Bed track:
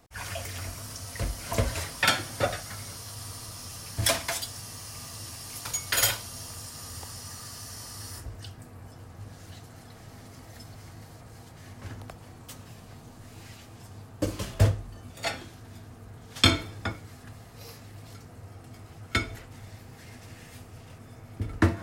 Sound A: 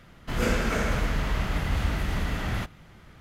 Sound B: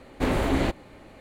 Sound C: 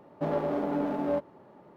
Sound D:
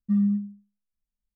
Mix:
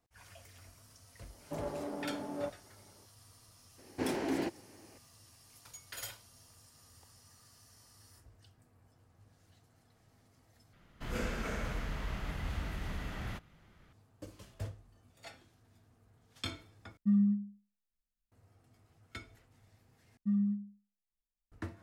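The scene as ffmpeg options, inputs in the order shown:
-filter_complex "[4:a]asplit=2[s0][s1];[0:a]volume=0.1[s2];[2:a]highpass=210,equalizer=f=340:t=q:w=4:g=5,equalizer=f=580:t=q:w=4:g=-5,equalizer=f=1200:t=q:w=4:g=-9,equalizer=f=2200:t=q:w=4:g=-3,equalizer=f=3600:t=q:w=4:g=-10,equalizer=f=5400:t=q:w=4:g=7,lowpass=f=6400:w=0.5412,lowpass=f=6400:w=1.3066[s3];[s2]asplit=4[s4][s5][s6][s7];[s4]atrim=end=10.734[s8];[1:a]atrim=end=3.2,asetpts=PTS-STARTPTS,volume=0.266[s9];[s5]atrim=start=13.926:end=16.974[s10];[s0]atrim=end=1.35,asetpts=PTS-STARTPTS,volume=0.562[s11];[s6]atrim=start=18.316:end=20.174[s12];[s1]atrim=end=1.35,asetpts=PTS-STARTPTS,volume=0.376[s13];[s7]atrim=start=21.516[s14];[3:a]atrim=end=1.76,asetpts=PTS-STARTPTS,volume=0.299,afade=t=in:d=0.004:c=hsin,afade=t=out:st=1.756:d=0.004:c=hsin,adelay=1300[s15];[s3]atrim=end=1.2,asetpts=PTS-STARTPTS,volume=0.376,afade=t=in:d=0.004:c=hsin,afade=t=out:st=1.196:d=0.004:c=hsin,adelay=3780[s16];[s8][s9]acrossfade=d=0.004:c1=hsin:c2=hsin[s17];[s17][s10]acrossfade=d=0.004:c1=hsin:c2=hsin[s18];[s18][s11]acrossfade=d=0.004:c1=hsin:c2=hsin[s19];[s19][s12]acrossfade=d=0.004:c1=hsin:c2=hsin[s20];[s20][s13]acrossfade=d=0.004:c1=hsin:c2=hsin[s21];[s21][s14]acrossfade=d=0.004:c1=hsin:c2=hsin[s22];[s22][s15][s16]amix=inputs=3:normalize=0"

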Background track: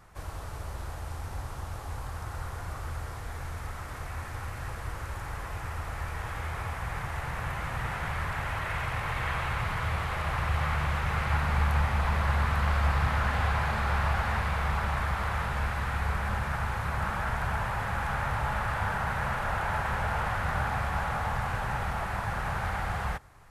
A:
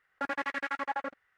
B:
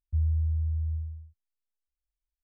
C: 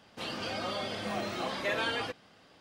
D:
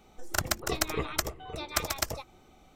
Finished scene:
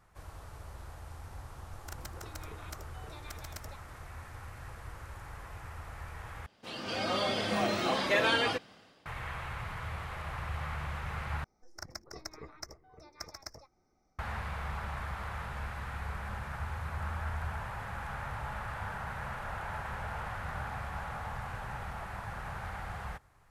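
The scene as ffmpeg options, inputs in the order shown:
-filter_complex "[4:a]asplit=2[s0][s1];[0:a]volume=0.355[s2];[s0]acompressor=threshold=0.00708:ratio=6:attack=41:release=89:knee=1:detection=peak[s3];[3:a]dynaudnorm=f=190:g=5:m=3.55[s4];[s1]firequalizer=gain_entry='entry(2100,0);entry(3000,-24);entry(5200,10);entry(7500,-10)':delay=0.05:min_phase=1[s5];[2:a]dynaudnorm=f=220:g=5:m=2.82[s6];[s2]asplit=3[s7][s8][s9];[s7]atrim=end=6.464[s10];[s4]atrim=end=2.6,asetpts=PTS-STARTPTS,volume=0.473[s11];[s8]atrim=start=9.056:end=11.444[s12];[s5]atrim=end=2.75,asetpts=PTS-STARTPTS,volume=0.158[s13];[s9]atrim=start=14.186[s14];[s3]atrim=end=2.75,asetpts=PTS-STARTPTS,volume=0.376,afade=t=in:d=0.004:c=hsin,afade=t=out:st=2.746:d=0.004:c=hsin,adelay=1540[s15];[s6]atrim=end=2.43,asetpts=PTS-STARTPTS,volume=0.141,afade=t=in:d=0.004:c=hsin,afade=t=out:st=2.426:d=0.004:c=hsin,adelay=16470[s16];[s10][s11]acrossfade=d=0.004:c1=hsin:c2=hsin[s17];[s17][s12]acrossfade=d=0.004:c1=hsin:c2=hsin[s18];[s18][s13]acrossfade=d=0.004:c1=hsin:c2=hsin[s19];[s19][s14]acrossfade=d=0.004:c1=hsin:c2=hsin[s20];[s20][s15][s16]amix=inputs=3:normalize=0"

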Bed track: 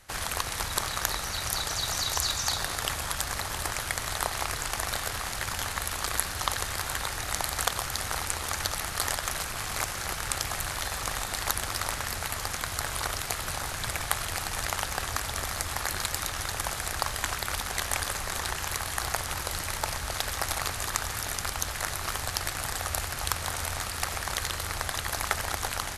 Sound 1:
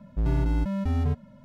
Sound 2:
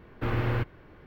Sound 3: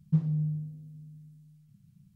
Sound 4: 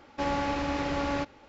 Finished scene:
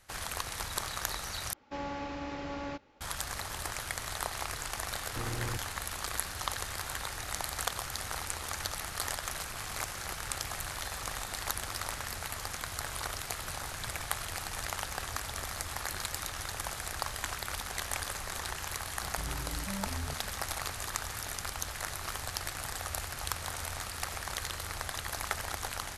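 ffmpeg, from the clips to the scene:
-filter_complex "[0:a]volume=0.501[s0];[1:a]acompressor=threshold=0.0316:ratio=6:attack=3.2:release=140:knee=1:detection=peak[s1];[s0]asplit=2[s2][s3];[s2]atrim=end=1.534[s4];[4:a]atrim=end=1.48,asetpts=PTS-STARTPTS,volume=0.355[s5];[s3]atrim=start=3.006[s6];[2:a]atrim=end=1.06,asetpts=PTS-STARTPTS,volume=0.335,afade=t=in:d=0.004:c=hsin,afade=t=out:st=1.056:d=0.004:c=hsin,adelay=4940[s7];[s1]atrim=end=1.44,asetpts=PTS-STARTPTS,volume=0.422,afade=t=in:d=0.004:c=hsin,afade=t=out:st=1.436:d=0.004:c=hsin,adelay=19010[s8];[s4][s5]acrossfade=d=0.004:c1=hsin:c2=hsin[s9];[s9][s6]acrossfade=d=0.004:c1=hsin:c2=hsin[s10];[s10][s7][s8]amix=inputs=3:normalize=0"

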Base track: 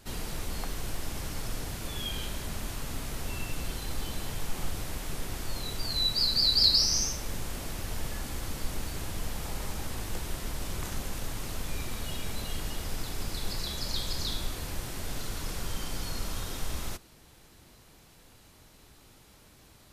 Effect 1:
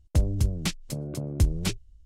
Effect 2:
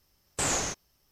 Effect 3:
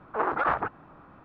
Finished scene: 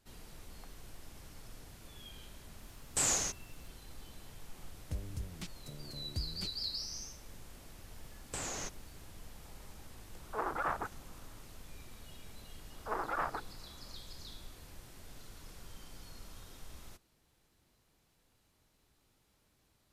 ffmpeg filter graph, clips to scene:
-filter_complex "[2:a]asplit=2[s0][s1];[3:a]asplit=2[s2][s3];[0:a]volume=0.15[s4];[s0]highshelf=f=4900:g=10.5[s5];[s1]acompressor=threshold=0.0251:ratio=6:attack=3.2:release=140:knee=1:detection=peak[s6];[s3]bandreject=f=50:t=h:w=6,bandreject=f=100:t=h:w=6,bandreject=f=150:t=h:w=6,bandreject=f=200:t=h:w=6,bandreject=f=250:t=h:w=6,bandreject=f=300:t=h:w=6,bandreject=f=350:t=h:w=6,bandreject=f=400:t=h:w=6,bandreject=f=450:t=h:w=6,bandreject=f=500:t=h:w=6[s7];[s5]atrim=end=1.11,asetpts=PTS-STARTPTS,volume=0.398,afade=t=in:d=0.004:c=hsin,afade=t=out:st=1.106:d=0.004:c=hsin,adelay=2580[s8];[1:a]atrim=end=2.05,asetpts=PTS-STARTPTS,volume=0.141,afade=t=in:d=0.004:c=hsin,afade=t=out:st=2.046:d=0.004:c=hsin,adelay=4760[s9];[s6]atrim=end=1.11,asetpts=PTS-STARTPTS,volume=0.596,afade=t=in:d=0.004:c=hsin,afade=t=out:st=1.106:d=0.004:c=hsin,adelay=7950[s10];[s2]atrim=end=1.24,asetpts=PTS-STARTPTS,volume=0.335,afade=t=in:d=0.004:c=hsin,afade=t=out:st=1.236:d=0.004:c=hsin,adelay=10190[s11];[s7]atrim=end=1.24,asetpts=PTS-STARTPTS,volume=0.316,afade=t=in:d=0.004:c=hsin,afade=t=out:st=1.236:d=0.004:c=hsin,adelay=12720[s12];[s4][s8][s9][s10][s11][s12]amix=inputs=6:normalize=0"

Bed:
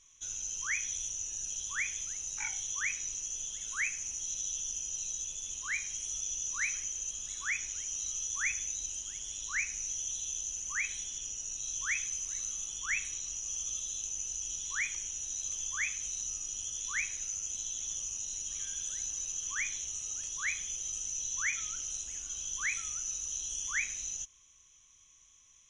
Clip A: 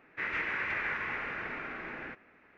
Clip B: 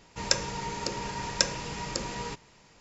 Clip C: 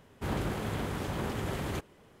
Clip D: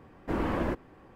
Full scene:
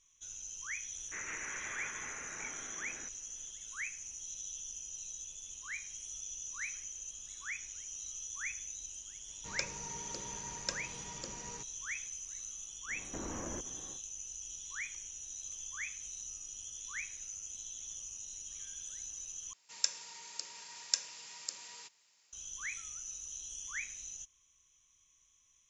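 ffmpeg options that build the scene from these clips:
-filter_complex "[2:a]asplit=2[s0][s1];[0:a]volume=0.422[s2];[4:a]acompressor=threshold=0.0112:ratio=6:attack=3.2:release=140:knee=1:detection=peak[s3];[s1]aderivative[s4];[s2]asplit=2[s5][s6];[s5]atrim=end=19.534[s7];[s4]atrim=end=2.8,asetpts=PTS-STARTPTS,volume=0.668[s8];[s6]atrim=start=22.326[s9];[1:a]atrim=end=2.57,asetpts=PTS-STARTPTS,volume=0.316,afade=t=in:d=0.004:c=hsin,afade=t=out:st=2.566:d=0.004:c=hsin,adelay=940[s10];[s0]atrim=end=2.8,asetpts=PTS-STARTPTS,volume=0.224,afade=t=in:d=0.004:c=hsin,afade=t=out:st=2.796:d=0.004:c=hsin,adelay=9280[s11];[s3]atrim=end=1.15,asetpts=PTS-STARTPTS,volume=0.944,afade=t=in:d=0.1,afade=t=out:st=1.05:d=0.1,adelay=12860[s12];[s7][s8]acrossfade=d=0.004:c1=hsin:c2=hsin[s13];[s13][s9]acrossfade=d=0.004:c1=hsin:c2=hsin[s14];[s14][s10][s11][s12]amix=inputs=4:normalize=0"

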